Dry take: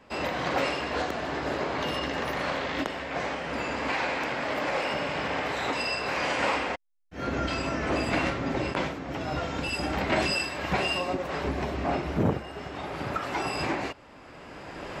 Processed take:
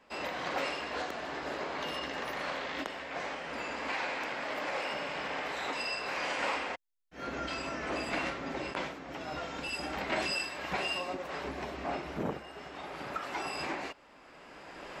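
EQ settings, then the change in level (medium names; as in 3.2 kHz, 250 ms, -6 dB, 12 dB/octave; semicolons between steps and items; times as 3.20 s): peaking EQ 97 Hz -11.5 dB 0.72 oct; bass shelf 480 Hz -5.5 dB; -5.0 dB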